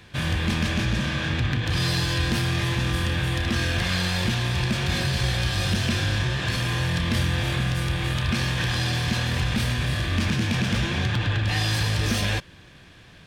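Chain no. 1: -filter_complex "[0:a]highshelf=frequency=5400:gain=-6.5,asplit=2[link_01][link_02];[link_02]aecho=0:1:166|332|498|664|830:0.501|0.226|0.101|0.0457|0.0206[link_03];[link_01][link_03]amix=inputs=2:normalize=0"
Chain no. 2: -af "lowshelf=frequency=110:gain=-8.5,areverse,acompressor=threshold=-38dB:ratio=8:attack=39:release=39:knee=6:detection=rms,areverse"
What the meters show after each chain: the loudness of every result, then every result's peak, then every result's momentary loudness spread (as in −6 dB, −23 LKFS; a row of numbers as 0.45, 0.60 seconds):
−23.5, −36.0 LKFS; −10.0, −23.5 dBFS; 2, 1 LU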